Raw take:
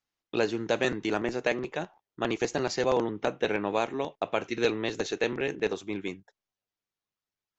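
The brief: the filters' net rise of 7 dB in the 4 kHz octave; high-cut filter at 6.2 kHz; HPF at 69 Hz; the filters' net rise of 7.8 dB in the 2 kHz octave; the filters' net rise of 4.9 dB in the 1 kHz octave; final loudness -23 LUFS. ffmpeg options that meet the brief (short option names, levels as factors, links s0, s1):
-af "highpass=69,lowpass=6200,equalizer=f=1000:t=o:g=4.5,equalizer=f=2000:t=o:g=7,equalizer=f=4000:t=o:g=6.5,volume=1.5"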